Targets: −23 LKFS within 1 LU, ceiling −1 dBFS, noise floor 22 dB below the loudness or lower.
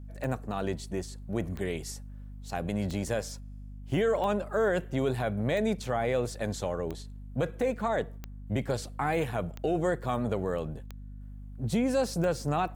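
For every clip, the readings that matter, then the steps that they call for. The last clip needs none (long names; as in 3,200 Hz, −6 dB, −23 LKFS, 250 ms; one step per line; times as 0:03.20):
number of clicks 10; mains hum 50 Hz; hum harmonics up to 250 Hz; level of the hum −40 dBFS; integrated loudness −31.0 LKFS; sample peak −17.0 dBFS; target loudness −23.0 LKFS
→ click removal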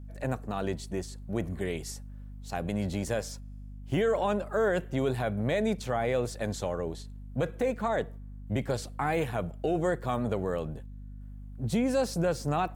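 number of clicks 0; mains hum 50 Hz; hum harmonics up to 250 Hz; level of the hum −40 dBFS
→ hum removal 50 Hz, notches 5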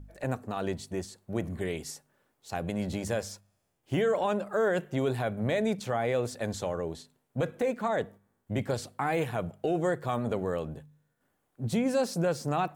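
mains hum none found; integrated loudness −31.5 LKFS; sample peak −17.5 dBFS; target loudness −23.0 LKFS
→ level +8.5 dB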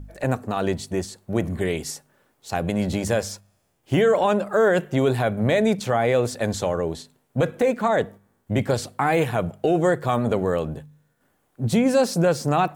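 integrated loudness −23.0 LKFS; sample peak −9.0 dBFS; background noise floor −68 dBFS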